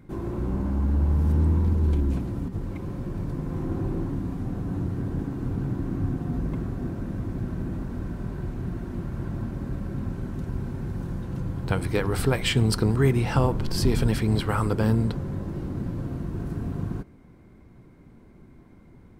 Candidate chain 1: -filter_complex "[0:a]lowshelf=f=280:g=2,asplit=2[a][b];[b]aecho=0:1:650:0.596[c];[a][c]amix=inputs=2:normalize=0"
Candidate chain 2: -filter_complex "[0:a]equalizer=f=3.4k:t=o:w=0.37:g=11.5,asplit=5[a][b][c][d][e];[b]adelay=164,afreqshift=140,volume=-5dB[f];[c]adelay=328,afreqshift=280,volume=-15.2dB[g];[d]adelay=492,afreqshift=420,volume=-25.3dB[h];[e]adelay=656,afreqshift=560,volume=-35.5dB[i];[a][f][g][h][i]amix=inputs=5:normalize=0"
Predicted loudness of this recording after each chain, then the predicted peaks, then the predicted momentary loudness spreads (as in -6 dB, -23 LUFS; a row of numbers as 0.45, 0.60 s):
-25.0, -25.5 LUFS; -6.5, -5.5 dBFS; 10, 11 LU